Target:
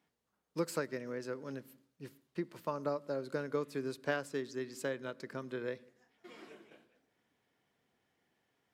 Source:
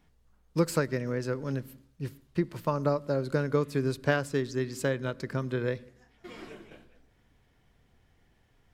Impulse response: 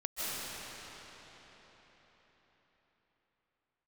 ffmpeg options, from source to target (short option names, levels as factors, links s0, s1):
-af "highpass=230,volume=0.422"